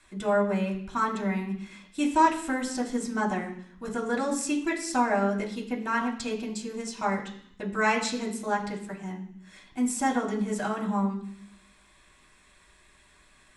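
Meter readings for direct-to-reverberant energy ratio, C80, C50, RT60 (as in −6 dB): −4.5 dB, 11.5 dB, 9.0 dB, 0.65 s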